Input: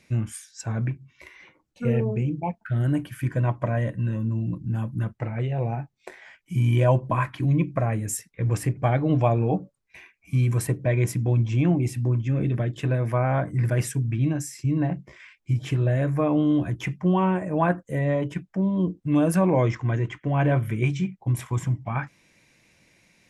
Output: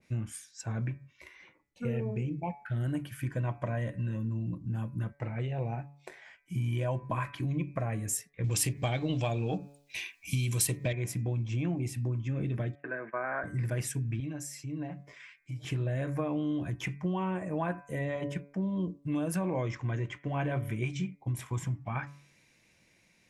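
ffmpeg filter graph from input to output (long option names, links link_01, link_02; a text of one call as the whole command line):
ffmpeg -i in.wav -filter_complex "[0:a]asettb=1/sr,asplit=3[link_01][link_02][link_03];[link_01]atrim=end=8.444[link_04];[link_02]atrim=start=8.44:end=10.93,asetpts=PTS-STARTPTS,afade=type=in:duration=0.004:curve=qsin,afade=type=out:start_time=2.486:duration=0.004:curve=qsin,highshelf=frequency=2300:width_type=q:width=1.5:gain=11,acontrast=65[link_05];[link_03]atrim=start=10.926[link_06];[link_04][link_05]acrossfade=duration=0.004:curve1=hsin:curve2=qsin[link_07];[link_07][link_06]acrossfade=duration=0.004:curve1=qsin:curve2=hsin,asettb=1/sr,asplit=3[link_08][link_09][link_10];[link_08]atrim=end=12.754[link_11];[link_09]atrim=start=12.75:end=13.44,asetpts=PTS-STARTPTS,afade=type=in:duration=0.004:curve=qsin,afade=type=out:start_time=0.686:duration=0.004:curve=qsin,agate=range=-29dB:threshold=-29dB:ratio=16:release=100:detection=peak,highpass=frequency=260:width=0.5412,highpass=frequency=260:width=1.3066,equalizer=frequency=280:width_type=q:width=4:gain=-7,equalizer=frequency=510:width_type=q:width=4:gain=-6,equalizer=frequency=820:width_type=q:width=4:gain=-5,equalizer=frequency=1600:width_type=q:width=4:gain=10,lowpass=frequency=2000:width=0.5412,lowpass=frequency=2000:width=1.3066[link_12];[link_10]atrim=start=13.436[link_13];[link_11][link_12]acrossfade=duration=0.004:curve1=hsin:curve2=qsin[link_14];[link_14][link_13]acrossfade=duration=0.004:curve1=qsin:curve2=hsin,asettb=1/sr,asplit=3[link_15][link_16][link_17];[link_15]atrim=end=14.204[link_18];[link_16]atrim=start=14.2:end=15.65,asetpts=PTS-STARTPTS,afade=type=in:duration=0.004:curve=qsin,afade=type=out:start_time=1.446:duration=0.004:curve=qsin,lowshelf=frequency=220:gain=-9.5,acompressor=threshold=-38dB:ratio=2:attack=3.2:release=140:knee=1:detection=peak,aecho=1:1:6.9:0.89,atrim=end_sample=63945[link_19];[link_17]atrim=start=15.646[link_20];[link_18][link_19]acrossfade=duration=0.004:curve1=hsin:curve2=qsin[link_21];[link_21][link_20]acrossfade=duration=0.004:curve1=qsin:curve2=hsin,bandreject=frequency=142.4:width_type=h:width=4,bandreject=frequency=284.8:width_type=h:width=4,bandreject=frequency=427.2:width_type=h:width=4,bandreject=frequency=569.6:width_type=h:width=4,bandreject=frequency=712:width_type=h:width=4,bandreject=frequency=854.4:width_type=h:width=4,bandreject=frequency=996.8:width_type=h:width=4,bandreject=frequency=1139.2:width_type=h:width=4,bandreject=frequency=1281.6:width_type=h:width=4,bandreject=frequency=1424:width_type=h:width=4,bandreject=frequency=1566.4:width_type=h:width=4,bandreject=frequency=1708.8:width_type=h:width=4,bandreject=frequency=1851.2:width_type=h:width=4,bandreject=frequency=1993.6:width_type=h:width=4,bandreject=frequency=2136:width_type=h:width=4,bandreject=frequency=2278.4:width_type=h:width=4,bandreject=frequency=2420.8:width_type=h:width=4,bandreject=frequency=2563.2:width_type=h:width=4,acompressor=threshold=-22dB:ratio=6,adynamicequalizer=threshold=0.00794:dfrequency=2000:dqfactor=0.7:tfrequency=2000:tqfactor=0.7:attack=5:release=100:ratio=0.375:range=2:mode=boostabove:tftype=highshelf,volume=-6dB" out.wav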